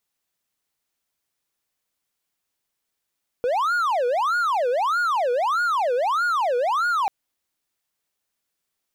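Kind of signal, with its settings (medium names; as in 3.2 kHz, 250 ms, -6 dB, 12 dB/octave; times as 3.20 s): siren wail 481–1440 Hz 1.6 per s triangle -17 dBFS 3.64 s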